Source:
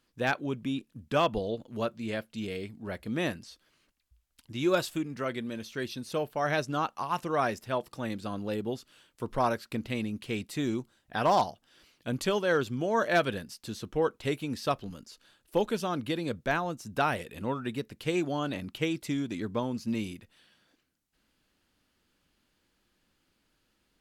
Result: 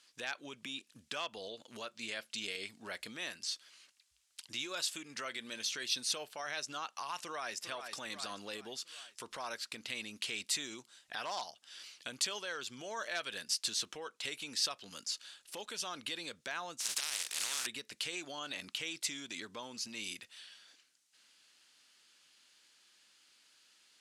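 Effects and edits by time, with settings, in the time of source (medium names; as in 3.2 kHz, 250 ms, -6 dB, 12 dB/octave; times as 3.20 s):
7.21–7.62 s: echo throw 400 ms, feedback 45%, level -13.5 dB
16.79–17.65 s: spectral contrast reduction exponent 0.22
whole clip: compression 5:1, threshold -36 dBFS; peak limiter -32.5 dBFS; frequency weighting ITU-R 468; trim +1.5 dB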